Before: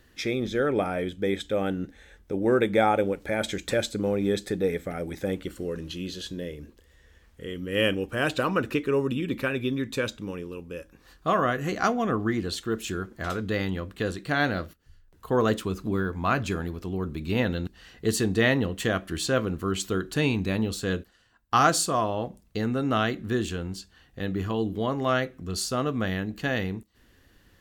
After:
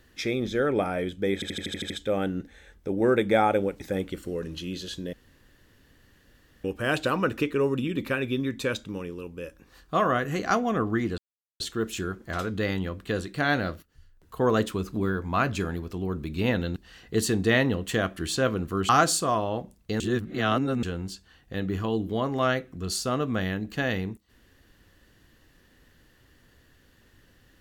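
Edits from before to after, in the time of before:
1.34 stutter 0.08 s, 8 plays
3.24–5.13 cut
6.46–7.97 room tone
12.51 insert silence 0.42 s
19.8–21.55 cut
22.66–23.49 reverse

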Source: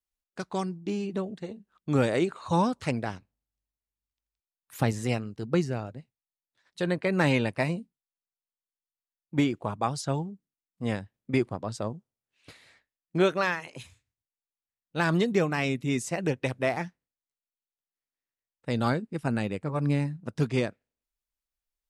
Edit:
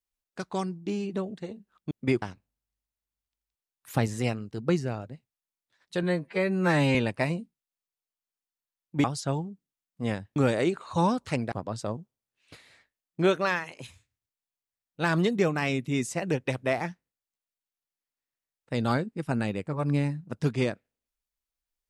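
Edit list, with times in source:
1.91–3.07 swap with 11.17–11.48
6.88–7.34 stretch 2×
9.43–9.85 cut

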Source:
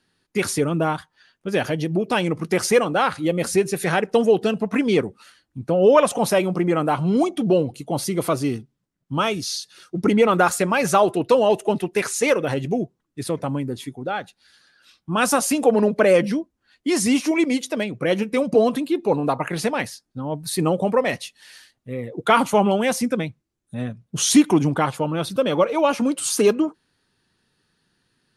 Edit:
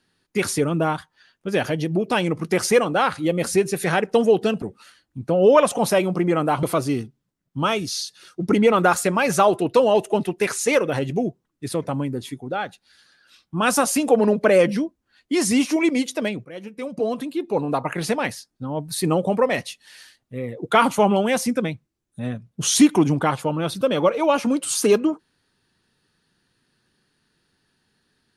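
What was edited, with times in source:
4.62–5.02 cut
7.03–8.18 cut
18–19.57 fade in, from -20 dB

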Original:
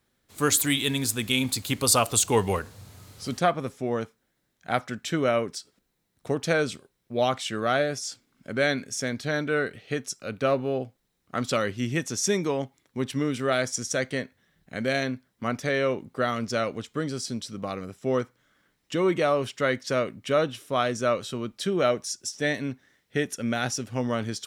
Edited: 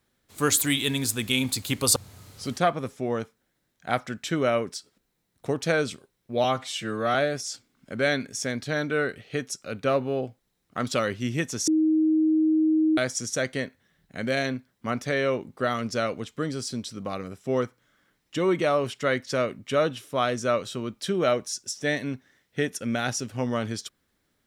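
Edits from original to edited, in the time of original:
1.96–2.77 cut
7.25–7.72 stretch 1.5×
12.25–13.55 bleep 314 Hz -18 dBFS

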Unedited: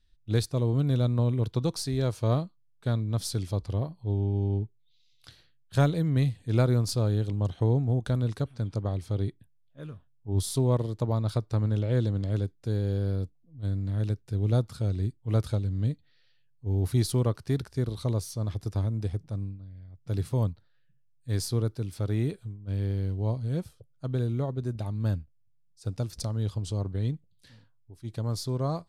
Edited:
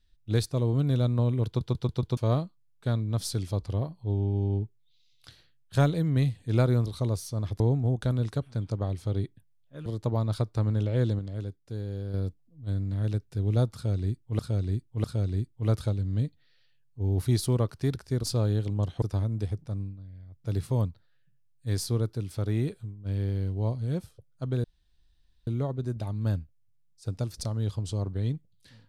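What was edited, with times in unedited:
1.47 stutter in place 0.14 s, 5 plays
6.86–7.64 swap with 17.9–18.64
9.9–10.82 cut
12.15–13.1 gain -6.5 dB
14.7–15.35 loop, 3 plays
24.26 insert room tone 0.83 s

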